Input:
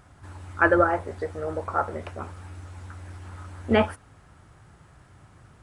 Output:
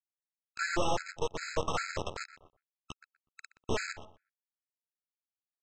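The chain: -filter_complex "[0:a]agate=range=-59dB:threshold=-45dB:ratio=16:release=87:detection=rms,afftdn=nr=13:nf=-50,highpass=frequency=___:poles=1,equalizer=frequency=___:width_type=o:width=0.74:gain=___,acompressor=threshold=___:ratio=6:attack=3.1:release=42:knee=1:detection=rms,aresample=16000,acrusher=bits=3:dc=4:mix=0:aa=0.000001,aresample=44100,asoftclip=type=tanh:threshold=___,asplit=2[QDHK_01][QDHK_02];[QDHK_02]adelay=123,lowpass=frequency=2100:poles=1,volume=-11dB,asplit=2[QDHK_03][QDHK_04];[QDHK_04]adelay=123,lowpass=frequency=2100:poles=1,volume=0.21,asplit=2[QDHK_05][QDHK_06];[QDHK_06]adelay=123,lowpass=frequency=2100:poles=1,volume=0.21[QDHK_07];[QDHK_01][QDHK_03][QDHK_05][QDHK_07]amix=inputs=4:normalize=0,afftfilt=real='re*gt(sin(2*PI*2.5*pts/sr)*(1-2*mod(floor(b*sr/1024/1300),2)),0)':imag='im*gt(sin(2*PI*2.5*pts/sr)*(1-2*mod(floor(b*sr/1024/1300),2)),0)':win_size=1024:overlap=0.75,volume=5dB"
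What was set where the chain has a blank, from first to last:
74, 180, -11, -25dB, -20.5dB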